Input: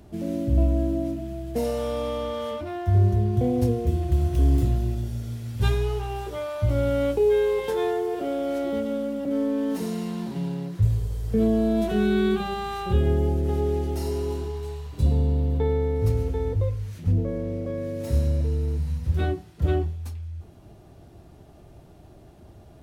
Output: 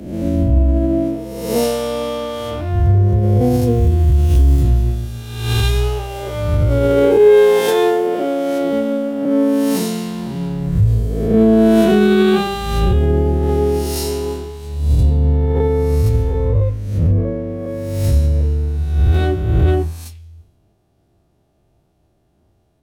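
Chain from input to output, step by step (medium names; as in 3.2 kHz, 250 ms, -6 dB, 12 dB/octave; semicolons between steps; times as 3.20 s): reverse spectral sustain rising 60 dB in 1.61 s; loudness maximiser +14 dB; three bands expanded up and down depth 100%; trim -5.5 dB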